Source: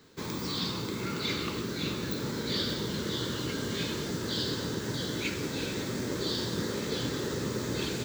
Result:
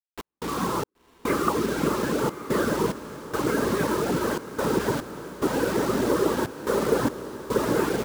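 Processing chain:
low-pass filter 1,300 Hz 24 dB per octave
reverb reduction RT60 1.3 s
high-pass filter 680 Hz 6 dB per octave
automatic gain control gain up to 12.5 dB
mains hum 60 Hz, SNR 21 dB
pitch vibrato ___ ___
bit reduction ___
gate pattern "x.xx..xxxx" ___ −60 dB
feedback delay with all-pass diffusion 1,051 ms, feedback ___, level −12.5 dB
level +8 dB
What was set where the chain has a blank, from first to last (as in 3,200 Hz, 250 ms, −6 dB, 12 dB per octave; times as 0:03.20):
13 Hz, 52 cents, 7 bits, 72 BPM, 42%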